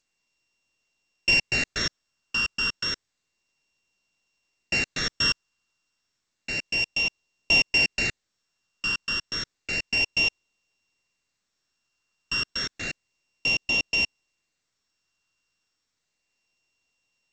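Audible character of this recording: a buzz of ramps at a fixed pitch in blocks of 16 samples; phasing stages 12, 0.31 Hz, lowest notch 700–1500 Hz; G.722

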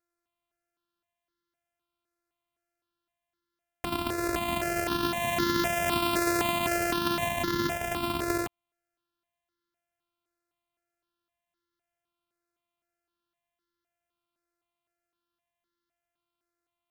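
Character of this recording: a buzz of ramps at a fixed pitch in blocks of 128 samples; notches that jump at a steady rate 3.9 Hz 850–2500 Hz

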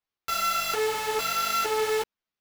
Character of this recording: aliases and images of a low sample rate 8800 Hz, jitter 0%; a shimmering, thickened sound

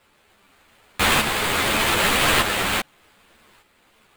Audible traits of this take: a quantiser's noise floor 10-bit, dither triangular; tremolo saw up 0.83 Hz, depth 55%; aliases and images of a low sample rate 5800 Hz, jitter 20%; a shimmering, thickened sound

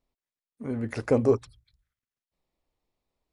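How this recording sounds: noise floor -96 dBFS; spectral tilt -6.5 dB/oct

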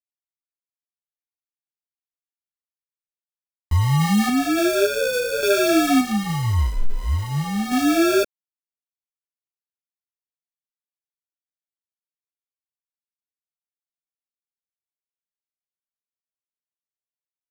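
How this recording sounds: aliases and images of a low sample rate 1000 Hz, jitter 0%; random-step tremolo 3.5 Hz; a quantiser's noise floor 8-bit, dither none; a shimmering, thickened sound

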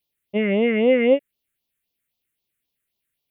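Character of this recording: phasing stages 4, 3.8 Hz, lowest notch 800–1600 Hz

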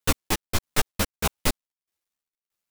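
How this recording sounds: tremolo saw down 1.6 Hz, depth 45%; a quantiser's noise floor 12-bit, dither none; a shimmering, thickened sound

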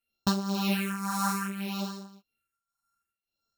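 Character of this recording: a buzz of ramps at a fixed pitch in blocks of 32 samples; phasing stages 4, 0.63 Hz, lowest notch 440–2300 Hz; tremolo triangle 1.8 Hz, depth 80%; a shimmering, thickened sound

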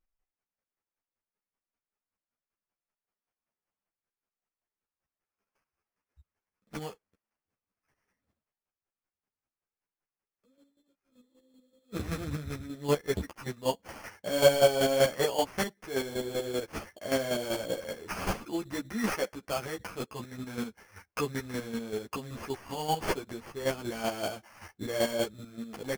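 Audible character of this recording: chopped level 5.2 Hz, depth 60%, duty 25%; aliases and images of a low sample rate 3800 Hz, jitter 0%; a shimmering, thickened sound

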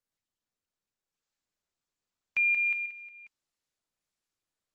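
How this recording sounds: random-step tremolo 3.5 Hz; Opus

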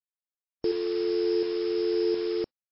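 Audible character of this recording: a buzz of ramps at a fixed pitch in blocks of 8 samples; tremolo saw up 1.4 Hz, depth 50%; a quantiser's noise floor 6-bit, dither none; MP3

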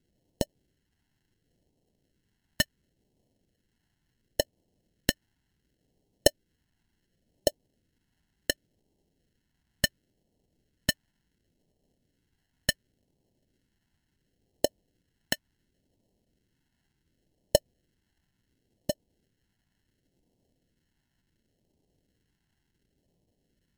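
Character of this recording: aliases and images of a low sample rate 1200 Hz, jitter 0%; phasing stages 2, 0.7 Hz, lowest notch 500–1400 Hz; MP3

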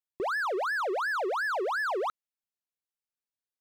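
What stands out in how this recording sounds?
noise floor -95 dBFS; spectral tilt +1.0 dB/oct

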